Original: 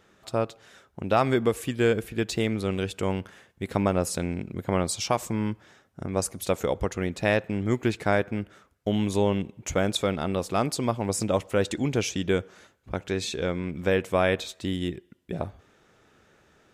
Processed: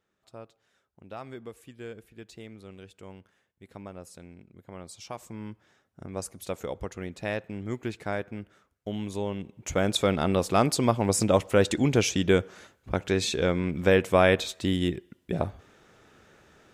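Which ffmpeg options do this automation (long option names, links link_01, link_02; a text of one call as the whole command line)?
ffmpeg -i in.wav -af "volume=3dB,afade=type=in:start_time=4.74:duration=1.29:silence=0.298538,afade=type=in:start_time=9.38:duration=0.83:silence=0.281838" out.wav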